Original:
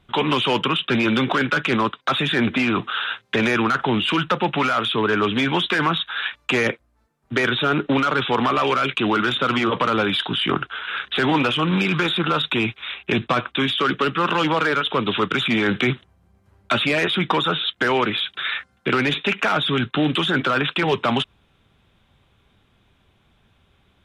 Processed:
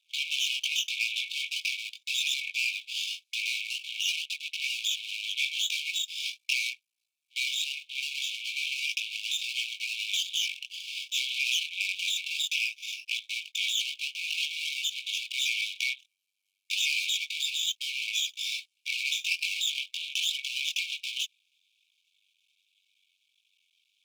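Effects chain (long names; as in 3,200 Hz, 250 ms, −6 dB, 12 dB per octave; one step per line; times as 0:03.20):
multi-voice chorus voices 2, 0.22 Hz, delay 21 ms, depth 2.1 ms
half-wave rectification
linear-phase brick-wall high-pass 2,200 Hz
level +3.5 dB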